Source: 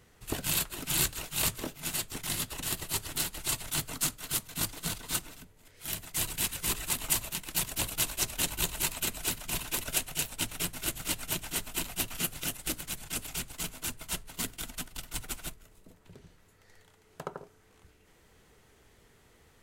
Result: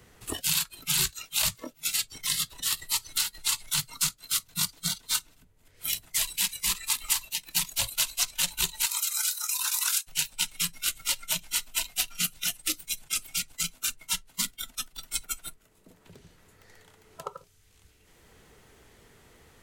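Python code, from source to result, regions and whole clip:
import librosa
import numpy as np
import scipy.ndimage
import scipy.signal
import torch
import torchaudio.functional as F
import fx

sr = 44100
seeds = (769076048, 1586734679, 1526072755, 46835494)

y = fx.chain(x, sr, fx.highpass(hz=940.0, slope=24),
    fx.peak_eq(hz=2500.0, db=-7.0, octaves=1.7),
    fx.pre_swell(db_per_s=30.0), at=(8.86, 10.07))
y = fx.noise_reduce_blind(y, sr, reduce_db=18)
y = fx.dynamic_eq(y, sr, hz=4800.0, q=0.99, threshold_db=-47.0, ratio=4.0, max_db=6)
y = fx.band_squash(y, sr, depth_pct=70)
y = F.gain(torch.from_numpy(y), 2.0).numpy()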